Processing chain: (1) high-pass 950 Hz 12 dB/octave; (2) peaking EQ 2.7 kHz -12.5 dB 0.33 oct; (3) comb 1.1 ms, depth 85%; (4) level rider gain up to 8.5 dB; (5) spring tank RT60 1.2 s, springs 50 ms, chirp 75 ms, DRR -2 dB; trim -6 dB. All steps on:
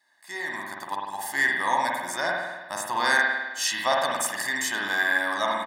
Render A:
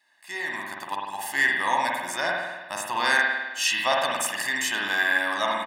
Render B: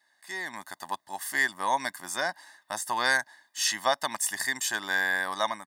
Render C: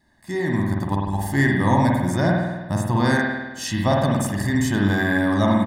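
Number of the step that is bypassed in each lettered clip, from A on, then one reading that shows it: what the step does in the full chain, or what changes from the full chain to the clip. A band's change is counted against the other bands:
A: 2, 4 kHz band +2.5 dB; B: 5, 8 kHz band +4.0 dB; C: 1, 125 Hz band +32.0 dB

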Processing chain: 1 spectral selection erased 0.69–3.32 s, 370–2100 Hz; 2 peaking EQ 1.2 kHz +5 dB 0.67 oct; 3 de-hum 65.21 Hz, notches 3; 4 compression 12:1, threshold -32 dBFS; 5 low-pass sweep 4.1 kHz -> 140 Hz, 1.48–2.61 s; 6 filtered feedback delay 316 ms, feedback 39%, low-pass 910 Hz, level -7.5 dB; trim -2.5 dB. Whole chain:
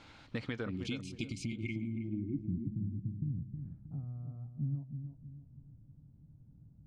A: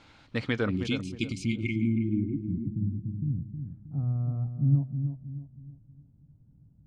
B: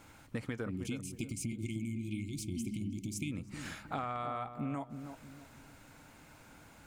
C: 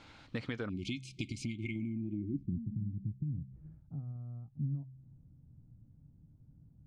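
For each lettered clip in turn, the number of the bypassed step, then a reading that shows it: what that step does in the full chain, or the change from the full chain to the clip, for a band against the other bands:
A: 4, mean gain reduction 5.0 dB; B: 5, 125 Hz band -4.5 dB; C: 6, echo-to-direct -12.0 dB to none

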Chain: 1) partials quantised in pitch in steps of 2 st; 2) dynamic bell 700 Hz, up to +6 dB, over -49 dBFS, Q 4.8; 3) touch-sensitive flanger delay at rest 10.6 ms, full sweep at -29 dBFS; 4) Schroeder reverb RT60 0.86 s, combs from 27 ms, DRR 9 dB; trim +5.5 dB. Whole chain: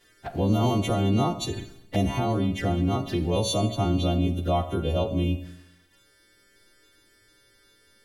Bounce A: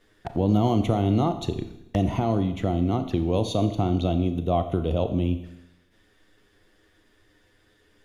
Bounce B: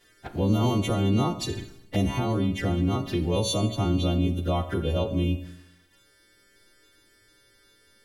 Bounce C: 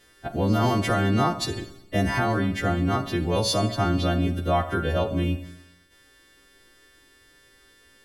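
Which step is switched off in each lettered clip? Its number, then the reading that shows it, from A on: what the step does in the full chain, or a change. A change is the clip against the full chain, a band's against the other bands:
1, 8 kHz band -9.5 dB; 2, 1 kHz band -3.0 dB; 3, 2 kHz band +7.5 dB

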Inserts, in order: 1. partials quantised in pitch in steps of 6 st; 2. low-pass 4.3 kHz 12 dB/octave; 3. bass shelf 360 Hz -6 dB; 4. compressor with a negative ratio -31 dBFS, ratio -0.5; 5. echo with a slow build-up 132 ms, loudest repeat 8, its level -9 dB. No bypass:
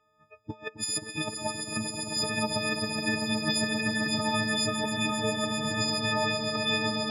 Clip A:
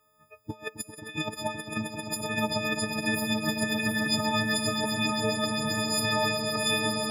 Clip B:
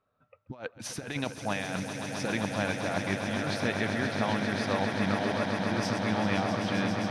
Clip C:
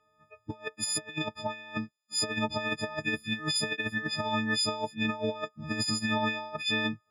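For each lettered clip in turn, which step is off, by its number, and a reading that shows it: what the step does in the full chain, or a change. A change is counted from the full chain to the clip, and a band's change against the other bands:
2, momentary loudness spread change +6 LU; 1, 8 kHz band -9.5 dB; 5, echo-to-direct 2.5 dB to none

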